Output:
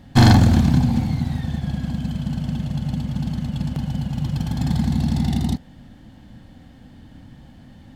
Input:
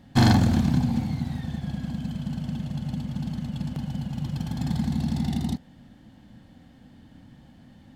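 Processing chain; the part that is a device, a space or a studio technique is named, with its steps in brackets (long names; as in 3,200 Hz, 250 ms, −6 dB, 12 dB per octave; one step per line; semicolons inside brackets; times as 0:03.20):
low shelf boost with a cut just above (low-shelf EQ 73 Hz +7.5 dB; parametric band 200 Hz −2 dB 0.86 octaves)
level +5.5 dB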